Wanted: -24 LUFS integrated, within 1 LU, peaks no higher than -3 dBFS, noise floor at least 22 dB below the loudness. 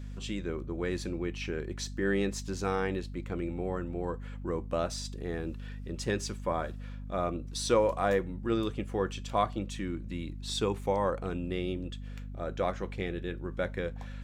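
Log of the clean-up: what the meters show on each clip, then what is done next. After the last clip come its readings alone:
hum 50 Hz; highest harmonic 250 Hz; hum level -38 dBFS; loudness -33.5 LUFS; peak level -14.0 dBFS; loudness target -24.0 LUFS
-> de-hum 50 Hz, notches 5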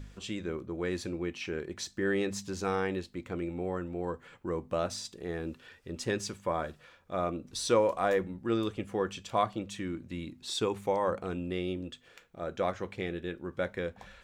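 hum not found; loudness -34.0 LUFS; peak level -14.5 dBFS; loudness target -24.0 LUFS
-> trim +10 dB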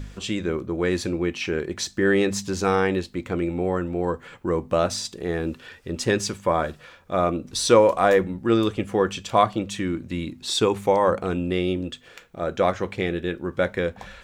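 loudness -24.0 LUFS; peak level -4.5 dBFS; noise floor -50 dBFS

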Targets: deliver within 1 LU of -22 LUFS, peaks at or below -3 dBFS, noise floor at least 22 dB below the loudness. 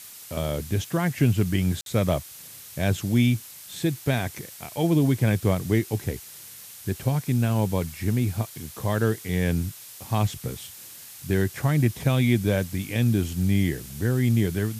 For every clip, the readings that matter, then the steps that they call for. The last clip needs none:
dropouts 1; longest dropout 52 ms; noise floor -44 dBFS; noise floor target -47 dBFS; loudness -25.0 LUFS; peak level -9.0 dBFS; loudness target -22.0 LUFS
-> interpolate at 1.81 s, 52 ms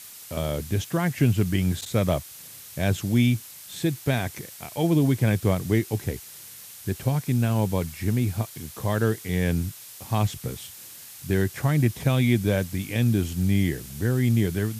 dropouts 0; noise floor -44 dBFS; noise floor target -47 dBFS
-> noise reduction 6 dB, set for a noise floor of -44 dBFS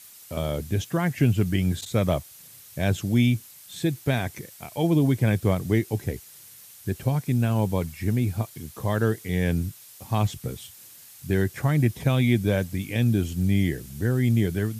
noise floor -48 dBFS; loudness -25.0 LUFS; peak level -9.0 dBFS; loudness target -22.0 LUFS
-> trim +3 dB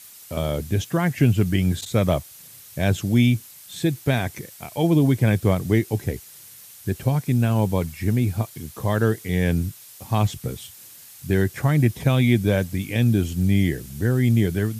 loudness -22.0 LUFS; peak level -6.0 dBFS; noise floor -45 dBFS

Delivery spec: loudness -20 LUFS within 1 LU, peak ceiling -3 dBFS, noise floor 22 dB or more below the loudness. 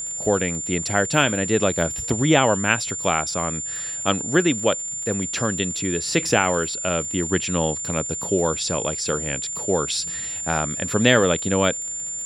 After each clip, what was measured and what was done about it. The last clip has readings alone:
tick rate 55 per s; steady tone 7.2 kHz; tone level -27 dBFS; loudness -21.5 LUFS; peak level -1.0 dBFS; loudness target -20.0 LUFS
-> de-click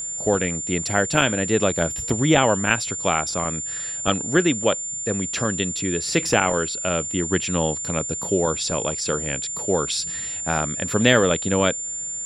tick rate 0.57 per s; steady tone 7.2 kHz; tone level -27 dBFS
-> band-stop 7.2 kHz, Q 30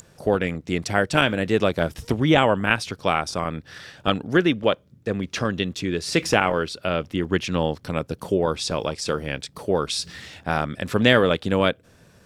steady tone not found; loudness -23.0 LUFS; peak level -1.5 dBFS; loudness target -20.0 LUFS
-> trim +3 dB; peak limiter -3 dBFS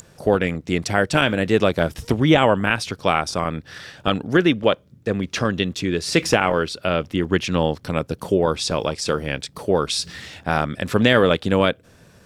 loudness -20.5 LUFS; peak level -3.0 dBFS; noise floor -52 dBFS

